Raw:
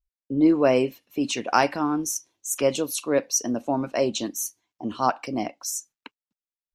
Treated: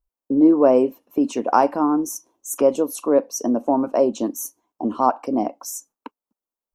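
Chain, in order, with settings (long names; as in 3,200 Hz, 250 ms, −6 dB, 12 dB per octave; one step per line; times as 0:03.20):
graphic EQ with 10 bands 125 Hz −9 dB, 250 Hz +7 dB, 500 Hz +5 dB, 1,000 Hz +8 dB, 2,000 Hz −10 dB, 4,000 Hz −11 dB, 8,000 Hz −3 dB
in parallel at +2.5 dB: downward compressor, threshold −25 dBFS, peak gain reduction 16 dB
on the sum: level −3.5 dB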